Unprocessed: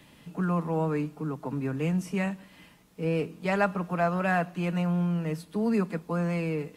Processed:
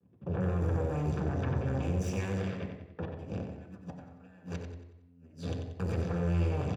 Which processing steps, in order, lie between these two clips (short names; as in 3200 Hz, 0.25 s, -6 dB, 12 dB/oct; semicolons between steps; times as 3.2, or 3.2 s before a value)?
octaver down 1 oct, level +4 dB; HPF 67 Hz 6 dB/oct; low-pass opened by the level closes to 800 Hz, open at -21.5 dBFS; gate -50 dBFS, range -23 dB; tone controls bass +11 dB, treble +13 dB; 3.05–5.8 negative-ratio compressor -55 dBFS, ratio -1; limiter -39.5 dBFS, peak gain reduction 33 dB; added harmonics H 3 -7 dB, 4 -8 dB, 5 -29 dB, 8 -27 dB, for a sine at -39.5 dBFS; feedback echo 92 ms, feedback 41%, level -7.5 dB; reverb RT60 0.85 s, pre-delay 3 ms, DRR 4 dB; gain +1 dB